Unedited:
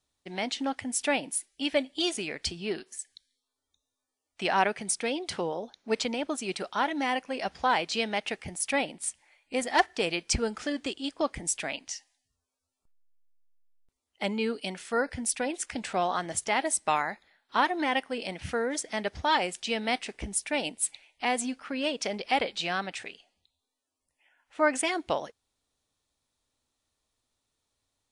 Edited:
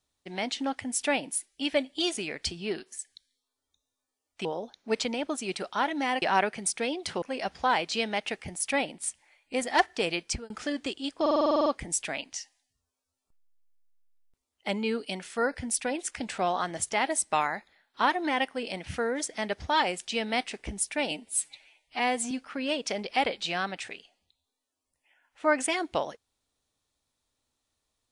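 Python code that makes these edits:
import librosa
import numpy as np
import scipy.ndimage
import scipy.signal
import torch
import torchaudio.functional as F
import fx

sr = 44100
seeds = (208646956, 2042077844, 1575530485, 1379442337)

y = fx.edit(x, sr, fx.move(start_s=4.45, length_s=1.0, to_s=7.22),
    fx.fade_out_span(start_s=10.2, length_s=0.3),
    fx.stutter(start_s=11.21, slice_s=0.05, count=10),
    fx.stretch_span(start_s=20.66, length_s=0.8, factor=1.5), tone=tone)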